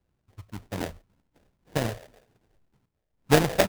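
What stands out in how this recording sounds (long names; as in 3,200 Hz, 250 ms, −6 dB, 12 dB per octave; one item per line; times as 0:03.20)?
phaser sweep stages 8, 1.9 Hz, lowest notch 240–1,600 Hz
aliases and images of a low sample rate 1,200 Hz, jitter 20%
amplitude modulation by smooth noise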